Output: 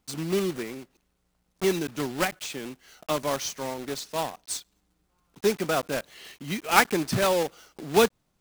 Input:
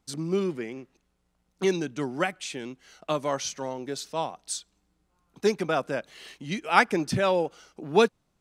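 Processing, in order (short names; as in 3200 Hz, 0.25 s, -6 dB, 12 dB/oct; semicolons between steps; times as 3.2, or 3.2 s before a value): block floating point 3-bit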